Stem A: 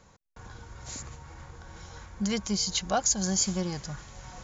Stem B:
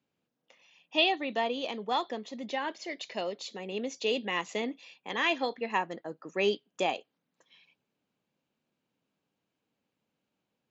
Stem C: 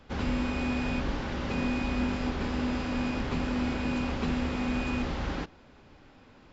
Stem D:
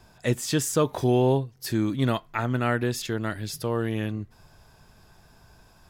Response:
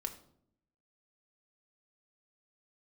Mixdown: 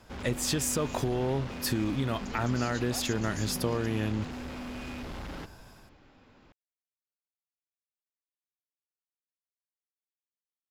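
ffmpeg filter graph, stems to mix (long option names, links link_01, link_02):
-filter_complex "[0:a]alimiter=limit=-24dB:level=0:latency=1,volume=-10.5dB[link_01];[2:a]asoftclip=type=hard:threshold=-34dB,volume=-3.5dB[link_02];[3:a]dynaudnorm=framelen=220:gausssize=3:maxgain=6dB,alimiter=limit=-12.5dB:level=0:latency=1,acompressor=threshold=-23dB:ratio=6,volume=-3dB[link_03];[link_01][link_02][link_03]amix=inputs=3:normalize=0"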